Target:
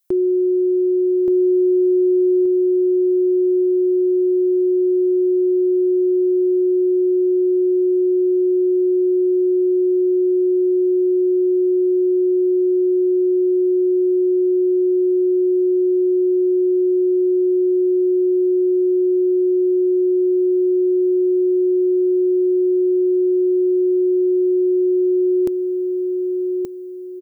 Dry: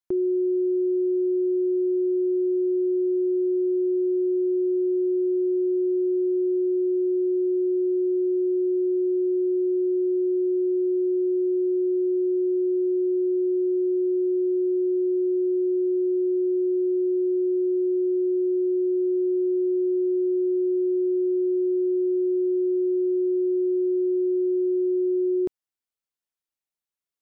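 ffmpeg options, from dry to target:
-filter_complex "[0:a]aemphasis=mode=production:type=75kf,asplit=2[s0][s1];[s1]aecho=0:1:1176|2352|3528|4704:0.631|0.183|0.0531|0.0154[s2];[s0][s2]amix=inputs=2:normalize=0,volume=2"

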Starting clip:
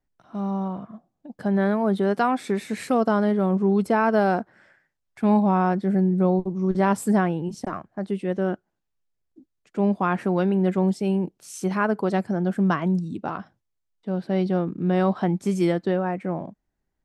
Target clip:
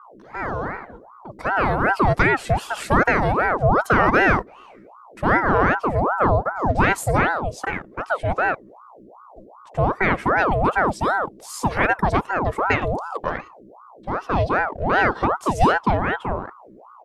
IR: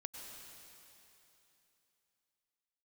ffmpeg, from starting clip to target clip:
-af "aeval=exprs='val(0)+0.00316*(sin(2*PI*60*n/s)+sin(2*PI*2*60*n/s)/2+sin(2*PI*3*60*n/s)/3+sin(2*PI*4*60*n/s)/4+sin(2*PI*5*60*n/s)/5)':c=same,aecho=1:1:2.6:0.56,aeval=exprs='val(0)*sin(2*PI*720*n/s+720*0.65/2.6*sin(2*PI*2.6*n/s))':c=same,volume=2"

